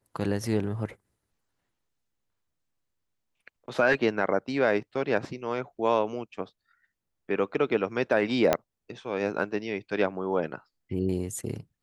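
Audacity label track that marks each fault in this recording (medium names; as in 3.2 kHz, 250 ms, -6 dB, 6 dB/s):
8.530000	8.530000	pop -7 dBFS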